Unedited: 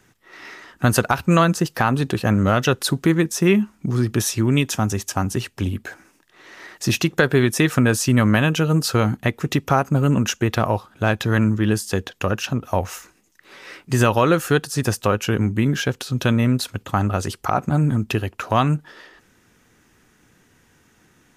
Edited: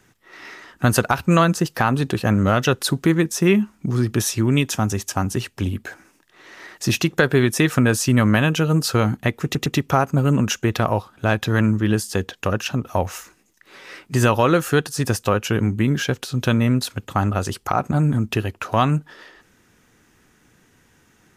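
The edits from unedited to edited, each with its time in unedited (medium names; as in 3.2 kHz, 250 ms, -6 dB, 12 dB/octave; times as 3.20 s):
9.44 s: stutter 0.11 s, 3 plays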